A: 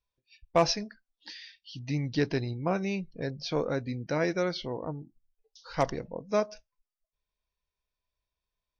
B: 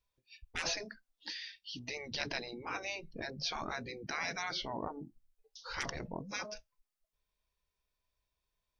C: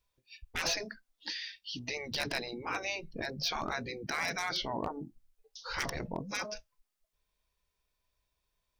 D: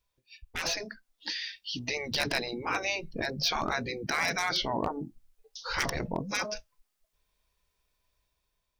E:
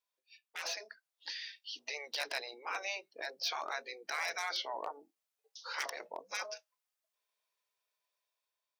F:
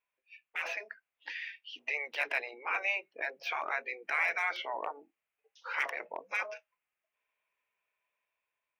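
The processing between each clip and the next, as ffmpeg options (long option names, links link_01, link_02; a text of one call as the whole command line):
ffmpeg -i in.wav -af "afftfilt=real='re*lt(hypot(re,im),0.0708)':imag='im*lt(hypot(re,im),0.0708)':win_size=1024:overlap=0.75,volume=2dB" out.wav
ffmpeg -i in.wav -af "aeval=exprs='0.0422*(abs(mod(val(0)/0.0422+3,4)-2)-1)':channel_layout=same,volume=4dB" out.wav
ffmpeg -i in.wav -af "dynaudnorm=framelen=740:gausssize=3:maxgain=5dB" out.wav
ffmpeg -i in.wav -af "highpass=frequency=490:width=0.5412,highpass=frequency=490:width=1.3066,volume=-7.5dB" out.wav
ffmpeg -i in.wav -af "highshelf=frequency=3300:width_type=q:width=3:gain=-10.5,volume=2.5dB" out.wav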